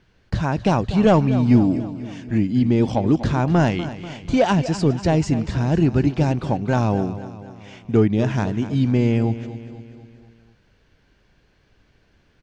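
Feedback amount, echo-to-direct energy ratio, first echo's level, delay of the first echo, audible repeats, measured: 54%, -12.0 dB, -13.5 dB, 244 ms, 5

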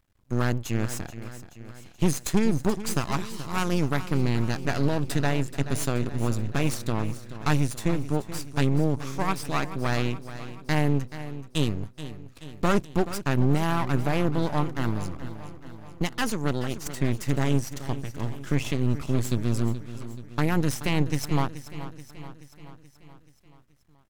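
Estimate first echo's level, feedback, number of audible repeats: -13.5 dB, 58%, 5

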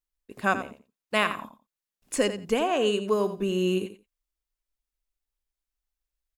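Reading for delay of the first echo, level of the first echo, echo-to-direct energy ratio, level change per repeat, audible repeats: 87 ms, -11.5 dB, -11.5 dB, -15.5 dB, 2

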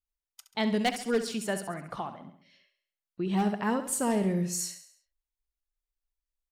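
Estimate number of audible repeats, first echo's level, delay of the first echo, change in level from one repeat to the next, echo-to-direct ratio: 4, -11.0 dB, 68 ms, -6.0 dB, -10.0 dB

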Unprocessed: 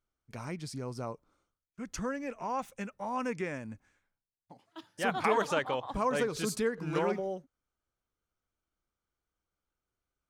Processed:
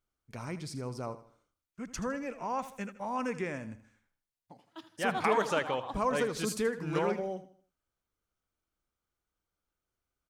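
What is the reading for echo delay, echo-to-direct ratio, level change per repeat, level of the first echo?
79 ms, -13.5 dB, -8.5 dB, -14.0 dB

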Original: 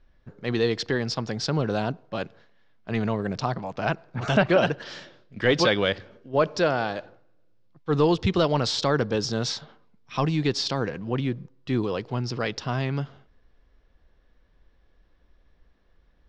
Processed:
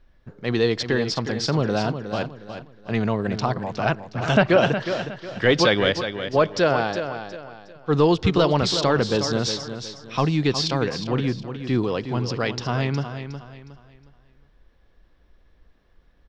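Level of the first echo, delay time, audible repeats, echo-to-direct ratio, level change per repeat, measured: -9.5 dB, 363 ms, 3, -9.0 dB, -9.5 dB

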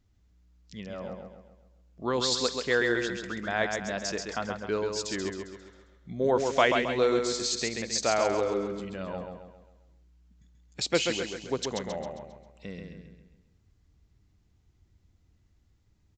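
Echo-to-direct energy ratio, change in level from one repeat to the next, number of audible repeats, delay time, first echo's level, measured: -4.0 dB, -7.0 dB, 5, 134 ms, -5.0 dB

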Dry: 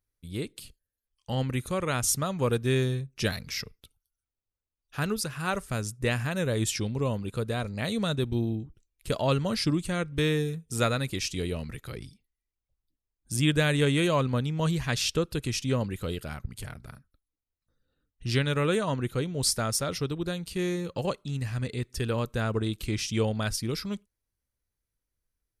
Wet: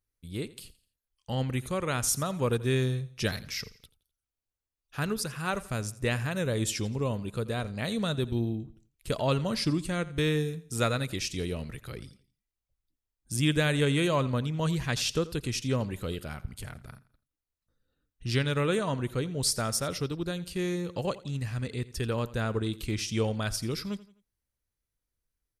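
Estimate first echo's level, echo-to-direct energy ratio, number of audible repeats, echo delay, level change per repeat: -18.5 dB, -18.0 dB, 3, 85 ms, -8.0 dB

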